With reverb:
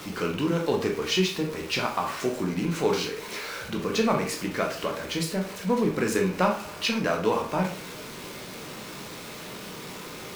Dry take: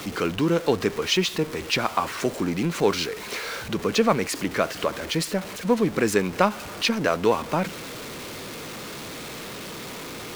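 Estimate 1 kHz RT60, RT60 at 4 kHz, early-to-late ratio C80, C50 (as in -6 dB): 0.40 s, 0.35 s, 12.5 dB, 7.5 dB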